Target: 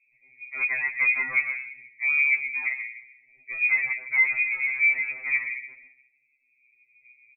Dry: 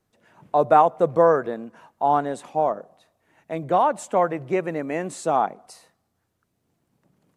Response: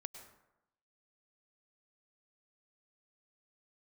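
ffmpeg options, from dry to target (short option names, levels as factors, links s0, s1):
-filter_complex "[0:a]asuperstop=centerf=1200:order=8:qfactor=0.56,aemphasis=mode=production:type=75fm,asplit=2[s0][s1];[1:a]atrim=start_sample=2205[s2];[s1][s2]afir=irnorm=-1:irlink=0,volume=2.11[s3];[s0][s3]amix=inputs=2:normalize=0,acontrast=81,asoftclip=type=tanh:threshold=0.188,asettb=1/sr,asplit=3[s4][s5][s6];[s4]atrim=end=4.454[s7];[s5]atrim=start=4.45:end=5.01,asetpts=PTS-STARTPTS,afade=t=in:d=0.004:c=qsin,afade=t=out:st=0.556:d=0.004:c=qsin,asplit=2[s8][s9];[s9]highpass=f=720:p=1,volume=8.91,asoftclip=type=tanh:threshold=0.188[s10];[s8][s10]amix=inputs=2:normalize=0,lowpass=f=1100:p=1,volume=0.501[s11];[s6]atrim=start=5.006[s12];[s7][s11]acrossfade=d=0.004:c1=hsin:c2=qsin[s13];[s13][s12]acrossfade=d=0.004:c1=qsin:c2=hsin,equalizer=f=1300:w=1.1:g=-10.5,aecho=1:1:139:0.133,lowpass=f=2200:t=q:w=0.5098,lowpass=f=2200:t=q:w=0.6013,lowpass=f=2200:t=q:w=0.9,lowpass=f=2200:t=q:w=2.563,afreqshift=-2600,afftfilt=real='re*2.45*eq(mod(b,6),0)':imag='im*2.45*eq(mod(b,6),0)':win_size=2048:overlap=0.75,volume=0.794"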